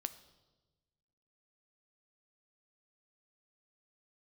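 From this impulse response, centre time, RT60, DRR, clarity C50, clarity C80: 6 ms, 1.2 s, 11.0 dB, 15.0 dB, 17.0 dB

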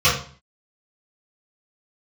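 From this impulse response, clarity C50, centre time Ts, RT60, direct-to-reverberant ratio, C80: 5.5 dB, 34 ms, 0.45 s, -13.0 dB, 10.0 dB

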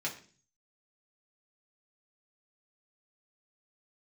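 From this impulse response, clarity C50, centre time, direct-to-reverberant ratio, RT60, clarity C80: 11.0 dB, 17 ms, -4.0 dB, 0.40 s, 15.0 dB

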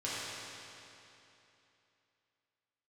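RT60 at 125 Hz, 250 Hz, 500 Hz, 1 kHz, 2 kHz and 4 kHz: 3.0 s, 3.0 s, 3.0 s, 3.0 s, 2.9 s, 2.7 s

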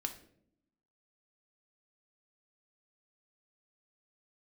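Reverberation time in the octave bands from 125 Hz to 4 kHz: 1.0 s, 1.2 s, 0.85 s, 0.50 s, 0.50 s, 0.40 s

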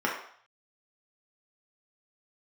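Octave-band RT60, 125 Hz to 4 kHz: 0.65 s, 0.40 s, 0.55 s, 0.65 s, 0.60 s, 0.60 s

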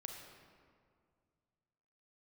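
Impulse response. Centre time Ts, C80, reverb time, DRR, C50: 63 ms, 4.5 dB, 2.1 s, 2.0 dB, 3.0 dB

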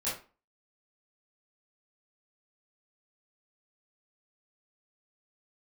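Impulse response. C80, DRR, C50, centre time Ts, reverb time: 11.0 dB, -10.5 dB, 4.5 dB, 39 ms, 0.35 s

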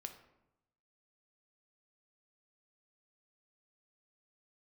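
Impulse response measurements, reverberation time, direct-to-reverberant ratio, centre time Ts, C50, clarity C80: 0.90 s, 5.5 dB, 14 ms, 10.0 dB, 12.5 dB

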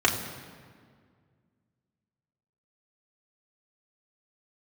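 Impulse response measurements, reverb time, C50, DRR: 1.9 s, 8.0 dB, -2.0 dB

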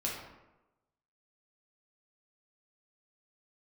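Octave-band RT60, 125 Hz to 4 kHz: 0.95 s, 1.0 s, 1.0 s, 1.0 s, 0.80 s, 0.55 s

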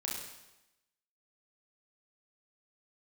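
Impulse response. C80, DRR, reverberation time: 4.5 dB, -3.5 dB, 0.95 s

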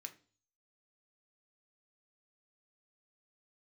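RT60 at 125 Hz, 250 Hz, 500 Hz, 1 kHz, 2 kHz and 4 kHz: 0.65 s, 0.50 s, 0.45 s, 0.35 s, 0.35 s, 0.50 s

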